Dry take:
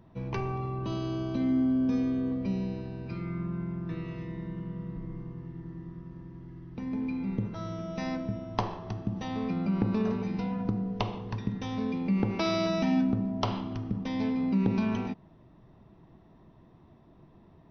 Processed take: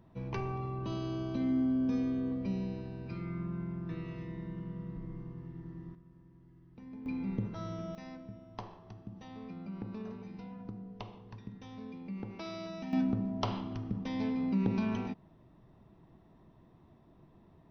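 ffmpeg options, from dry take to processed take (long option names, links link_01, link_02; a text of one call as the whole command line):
ffmpeg -i in.wav -af "asetnsamples=nb_out_samples=441:pad=0,asendcmd='5.95 volume volume -14dB;7.06 volume volume -3.5dB;7.95 volume volume -14dB;12.93 volume volume -4dB',volume=-4dB" out.wav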